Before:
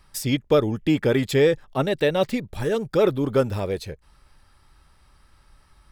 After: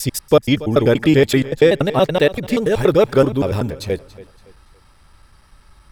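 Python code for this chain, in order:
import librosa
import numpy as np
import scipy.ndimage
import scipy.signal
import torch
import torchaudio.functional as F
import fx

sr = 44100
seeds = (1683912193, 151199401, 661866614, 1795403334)

y = fx.block_reorder(x, sr, ms=95.0, group=3)
y = fx.echo_feedback(y, sr, ms=282, feedback_pct=34, wet_db=-18)
y = y * librosa.db_to_amplitude(6.5)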